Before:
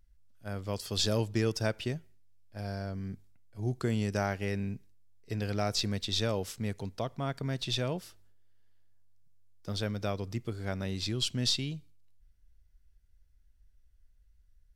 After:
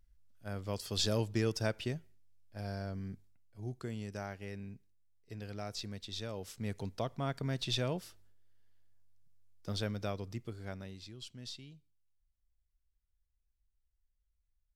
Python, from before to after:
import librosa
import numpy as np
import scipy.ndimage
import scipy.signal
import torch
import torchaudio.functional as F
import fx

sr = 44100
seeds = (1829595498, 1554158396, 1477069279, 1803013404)

y = fx.gain(x, sr, db=fx.line((2.97, -3.0), (3.94, -11.0), (6.3, -11.0), (6.78, -2.0), (9.7, -2.0), (10.74, -8.5), (11.08, -17.0)))